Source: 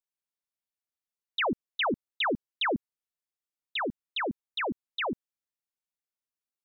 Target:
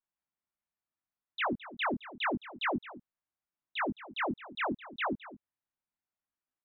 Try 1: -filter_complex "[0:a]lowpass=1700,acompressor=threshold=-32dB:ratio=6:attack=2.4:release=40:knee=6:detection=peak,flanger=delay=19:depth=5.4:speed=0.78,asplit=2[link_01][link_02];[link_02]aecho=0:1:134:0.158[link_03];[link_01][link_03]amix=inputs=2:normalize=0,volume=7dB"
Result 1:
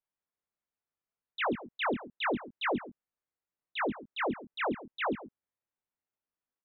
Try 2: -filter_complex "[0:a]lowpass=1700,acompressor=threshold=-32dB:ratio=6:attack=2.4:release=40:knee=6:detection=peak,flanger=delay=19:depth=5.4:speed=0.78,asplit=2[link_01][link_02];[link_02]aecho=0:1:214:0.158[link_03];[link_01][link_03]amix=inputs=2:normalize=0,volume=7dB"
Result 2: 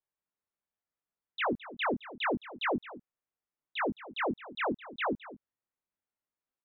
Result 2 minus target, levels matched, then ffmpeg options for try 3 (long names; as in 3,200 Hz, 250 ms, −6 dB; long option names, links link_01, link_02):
500 Hz band +3.0 dB
-filter_complex "[0:a]lowpass=1700,acompressor=threshold=-32dB:ratio=6:attack=2.4:release=40:knee=6:detection=peak,equalizer=frequency=470:width_type=o:width=0.32:gain=-12.5,flanger=delay=19:depth=5.4:speed=0.78,asplit=2[link_01][link_02];[link_02]aecho=0:1:214:0.158[link_03];[link_01][link_03]amix=inputs=2:normalize=0,volume=7dB"